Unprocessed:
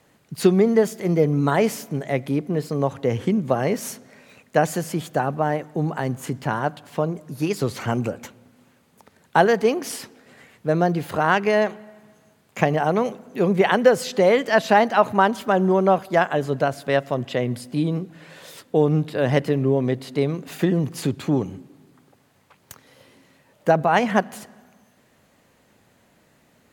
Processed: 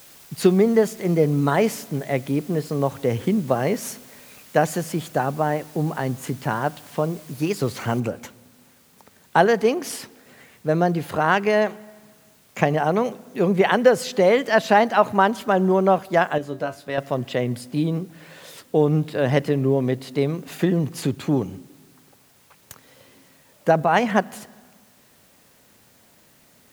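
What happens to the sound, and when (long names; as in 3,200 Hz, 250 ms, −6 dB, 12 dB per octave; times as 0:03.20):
0:08.00: noise floor change −48 dB −58 dB
0:16.38–0:16.98: tuned comb filter 97 Hz, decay 0.18 s, mix 80%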